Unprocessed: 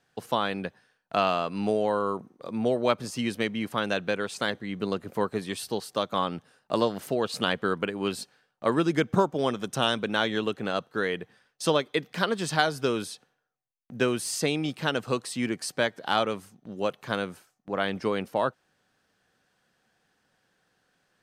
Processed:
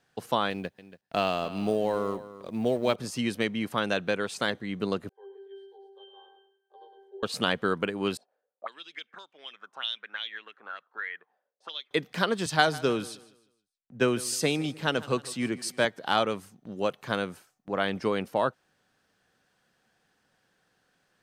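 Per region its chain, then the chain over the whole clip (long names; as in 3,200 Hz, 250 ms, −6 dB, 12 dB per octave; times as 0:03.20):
0:00.50–0:02.96: mu-law and A-law mismatch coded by A + parametric band 1,200 Hz −5.5 dB 0.97 octaves + single-tap delay 282 ms −15.5 dB
0:05.09–0:07.23: Butterworth high-pass 330 Hz 72 dB per octave + resonances in every octave G, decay 0.68 s + repeating echo 105 ms, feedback 30%, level −8.5 dB
0:08.17–0:11.91: high-pass filter 210 Hz + envelope filter 490–3,600 Hz, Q 5.3, up, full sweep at −20.5 dBFS
0:12.46–0:15.85: repeating echo 155 ms, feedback 44%, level −17.5 dB + multiband upward and downward expander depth 40%
whole clip: no processing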